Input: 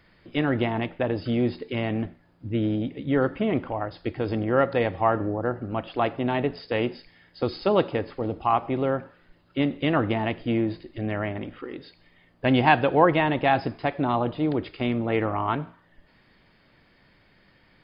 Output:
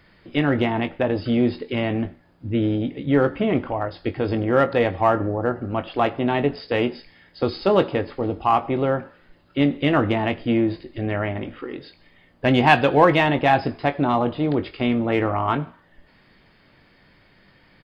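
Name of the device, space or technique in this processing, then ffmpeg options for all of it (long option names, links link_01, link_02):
parallel distortion: -filter_complex "[0:a]asettb=1/sr,asplit=3[link_01][link_02][link_03];[link_01]atrim=end=12.694[link_04];[link_02]atrim=start=12.69:end=13.29,asetpts=PTS-STARTPTS,afade=type=in:duration=0.004:curve=qsin,afade=type=out:start_time=0.596:duration=0.004:curve=qsin,highshelf=frequency=4500:gain=11.5[link_05];[link_03]atrim=start=13.286[link_06];[link_04][link_05]acrossfade=duration=0.004:curve1=hsin:curve2=qsin[link_07];[link_07][link_06]acrossfade=duration=0.004:curve1=qsin:curve2=hsin,asplit=2[link_08][link_09];[link_09]asoftclip=type=hard:threshold=-16.5dB,volume=-9dB[link_10];[link_08][link_10]amix=inputs=2:normalize=0,asplit=2[link_11][link_12];[link_12]adelay=21,volume=-10.5dB[link_13];[link_11][link_13]amix=inputs=2:normalize=0,volume=1dB"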